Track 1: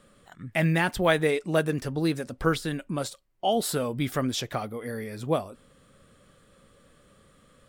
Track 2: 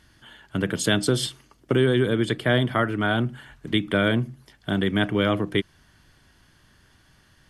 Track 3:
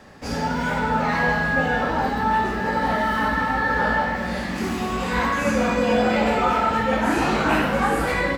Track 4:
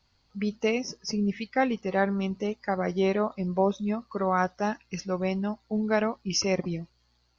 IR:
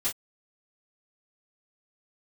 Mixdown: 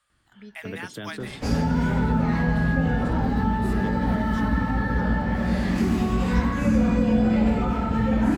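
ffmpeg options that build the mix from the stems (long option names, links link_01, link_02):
-filter_complex "[0:a]highpass=frequency=870:width=0.5412,highpass=frequency=870:width=1.3066,volume=-10dB[link_01];[1:a]alimiter=limit=-12dB:level=0:latency=1:release=143,lowpass=frequency=2300:poles=1,adelay=100,volume=-10.5dB[link_02];[2:a]lowshelf=frequency=340:gain=7.5,adelay=1200,volume=1dB[link_03];[3:a]volume=-15.5dB[link_04];[link_01][link_02][link_03][link_04]amix=inputs=4:normalize=0,acrossover=split=270[link_05][link_06];[link_06]acompressor=threshold=-28dB:ratio=10[link_07];[link_05][link_07]amix=inputs=2:normalize=0"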